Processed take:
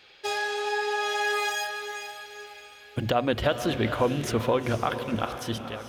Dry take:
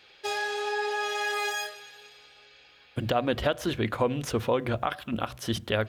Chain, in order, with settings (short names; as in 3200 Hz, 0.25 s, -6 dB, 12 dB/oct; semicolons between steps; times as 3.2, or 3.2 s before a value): ending faded out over 0.57 s; diffused feedback echo 0.472 s, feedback 42%, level -9 dB; gain +1.5 dB